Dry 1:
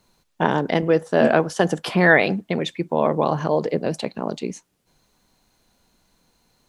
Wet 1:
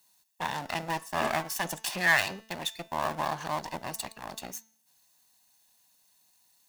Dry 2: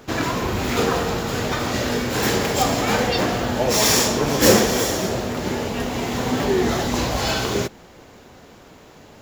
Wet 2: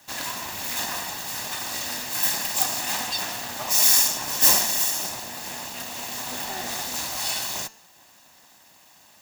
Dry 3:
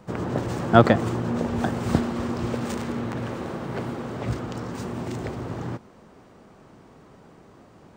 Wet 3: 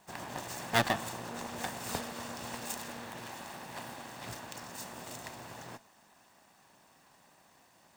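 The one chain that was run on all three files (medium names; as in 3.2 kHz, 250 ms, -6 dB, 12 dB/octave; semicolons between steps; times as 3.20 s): comb filter that takes the minimum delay 1.1 ms; RIAA curve recording; de-hum 221.9 Hz, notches 32; trim -8.5 dB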